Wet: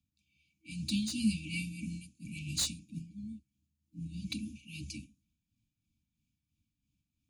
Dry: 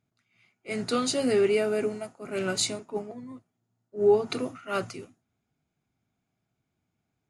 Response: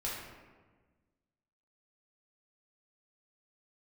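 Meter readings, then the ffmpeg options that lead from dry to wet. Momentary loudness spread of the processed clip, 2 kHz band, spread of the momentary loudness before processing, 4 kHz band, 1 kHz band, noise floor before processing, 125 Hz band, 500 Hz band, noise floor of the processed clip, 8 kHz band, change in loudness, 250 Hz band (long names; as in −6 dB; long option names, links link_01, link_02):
14 LU, −9.0 dB, 18 LU, −4.5 dB, −30.0 dB, −81 dBFS, +1.5 dB, below −40 dB, below −85 dBFS, −5.5 dB, −10.5 dB, −4.0 dB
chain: -filter_complex "[0:a]afftfilt=real='re*(1-between(b*sr/4096,360,2300))':imag='im*(1-between(b*sr/4096,360,2300))':win_size=4096:overlap=0.75,adynamicequalizer=threshold=0.00631:dfrequency=190:dqfactor=3.1:tfrequency=190:tqfactor=3.1:attack=5:release=100:ratio=0.375:range=1.5:mode=cutabove:tftype=bell,acrossover=split=300|1300[link_01][link_02][link_03];[link_03]asoftclip=type=tanh:threshold=-26dB[link_04];[link_01][link_02][link_04]amix=inputs=3:normalize=0,tremolo=f=3:d=0.54,afreqshift=-39"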